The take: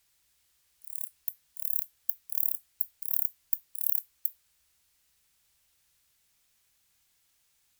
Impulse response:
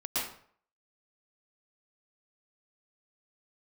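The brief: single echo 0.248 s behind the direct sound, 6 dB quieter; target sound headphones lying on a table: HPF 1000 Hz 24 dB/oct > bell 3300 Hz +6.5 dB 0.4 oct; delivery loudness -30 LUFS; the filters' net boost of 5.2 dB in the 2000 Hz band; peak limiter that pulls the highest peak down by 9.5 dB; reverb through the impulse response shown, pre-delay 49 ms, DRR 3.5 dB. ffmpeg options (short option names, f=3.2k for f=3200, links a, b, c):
-filter_complex "[0:a]equalizer=f=2k:t=o:g=5.5,alimiter=limit=-16.5dB:level=0:latency=1,aecho=1:1:248:0.501,asplit=2[a][b];[1:a]atrim=start_sample=2205,adelay=49[c];[b][c]afir=irnorm=-1:irlink=0,volume=-10dB[d];[a][d]amix=inputs=2:normalize=0,highpass=f=1k:w=0.5412,highpass=f=1k:w=1.3066,equalizer=f=3.3k:t=o:w=0.4:g=6.5,volume=3.5dB"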